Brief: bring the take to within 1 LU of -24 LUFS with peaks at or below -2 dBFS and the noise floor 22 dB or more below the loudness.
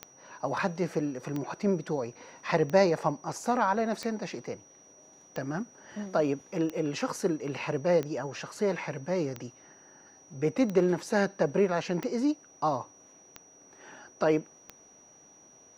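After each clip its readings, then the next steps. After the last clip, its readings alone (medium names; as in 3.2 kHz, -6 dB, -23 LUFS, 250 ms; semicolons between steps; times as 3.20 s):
clicks found 12; steady tone 5.8 kHz; tone level -55 dBFS; loudness -30.0 LUFS; peak level -10.5 dBFS; loudness target -24.0 LUFS
-> de-click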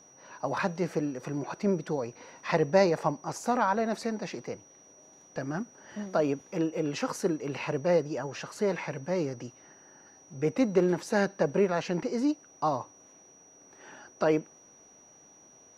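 clicks found 0; steady tone 5.8 kHz; tone level -55 dBFS
-> band-stop 5.8 kHz, Q 30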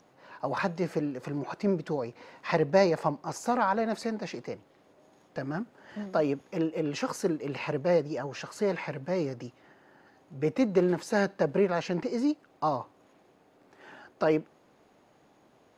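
steady tone not found; loudness -30.0 LUFS; peak level -10.5 dBFS; loudness target -24.0 LUFS
-> trim +6 dB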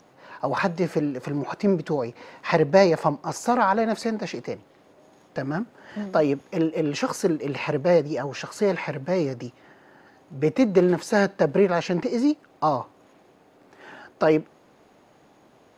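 loudness -24.0 LUFS; peak level -4.5 dBFS; noise floor -57 dBFS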